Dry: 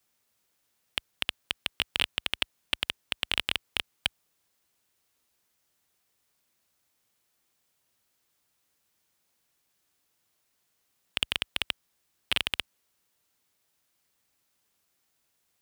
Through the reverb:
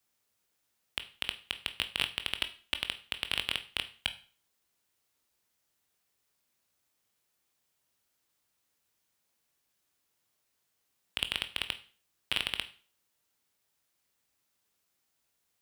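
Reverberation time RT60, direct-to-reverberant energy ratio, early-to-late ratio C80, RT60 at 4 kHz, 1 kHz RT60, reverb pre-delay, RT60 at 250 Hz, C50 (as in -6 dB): 0.40 s, 9.0 dB, 19.5 dB, 0.40 s, 0.40 s, 17 ms, 0.45 s, 15.5 dB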